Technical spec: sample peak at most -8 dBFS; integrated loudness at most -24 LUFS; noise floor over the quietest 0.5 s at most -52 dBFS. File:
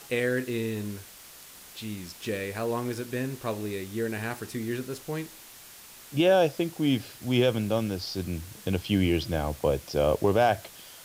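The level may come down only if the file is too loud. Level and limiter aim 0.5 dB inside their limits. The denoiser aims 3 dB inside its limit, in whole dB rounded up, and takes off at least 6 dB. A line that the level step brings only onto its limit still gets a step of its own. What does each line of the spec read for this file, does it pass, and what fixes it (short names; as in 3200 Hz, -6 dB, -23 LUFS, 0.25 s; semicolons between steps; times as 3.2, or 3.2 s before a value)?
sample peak -11.5 dBFS: OK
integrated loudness -28.5 LUFS: OK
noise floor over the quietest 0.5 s -49 dBFS: fail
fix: denoiser 6 dB, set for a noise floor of -49 dBFS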